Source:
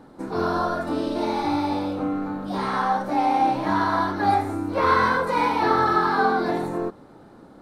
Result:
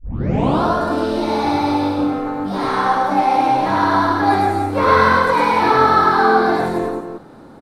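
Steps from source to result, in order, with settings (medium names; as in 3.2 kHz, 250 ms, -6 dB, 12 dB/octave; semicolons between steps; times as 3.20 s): tape start-up on the opening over 0.63 s; loudspeakers at several distances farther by 36 m -1 dB, 96 m -7 dB; trim +4 dB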